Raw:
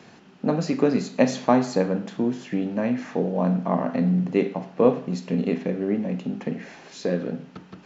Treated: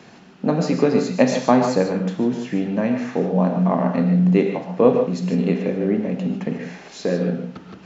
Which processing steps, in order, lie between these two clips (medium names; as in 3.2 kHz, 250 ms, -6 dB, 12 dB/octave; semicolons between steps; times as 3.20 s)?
gated-style reverb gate 170 ms rising, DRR 5.5 dB; trim +3 dB